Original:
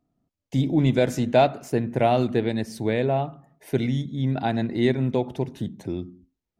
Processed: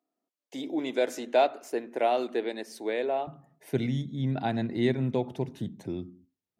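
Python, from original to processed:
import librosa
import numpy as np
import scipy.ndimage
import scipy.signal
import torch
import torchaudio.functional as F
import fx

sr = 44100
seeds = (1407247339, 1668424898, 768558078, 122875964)

y = fx.highpass(x, sr, hz=fx.steps((0.0, 320.0), (3.27, 87.0)), slope=24)
y = F.gain(torch.from_numpy(y), -4.5).numpy()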